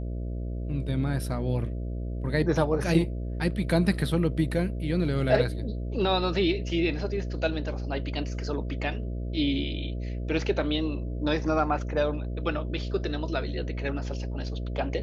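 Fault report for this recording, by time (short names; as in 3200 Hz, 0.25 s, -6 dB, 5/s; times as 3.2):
buzz 60 Hz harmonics 11 -32 dBFS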